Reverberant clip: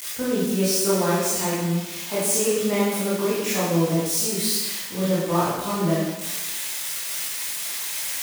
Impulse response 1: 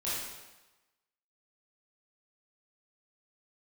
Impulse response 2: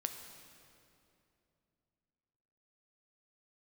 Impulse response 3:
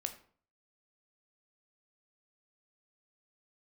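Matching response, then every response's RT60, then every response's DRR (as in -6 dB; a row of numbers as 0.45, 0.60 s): 1; 1.1, 2.8, 0.50 s; -10.0, 5.5, 6.5 dB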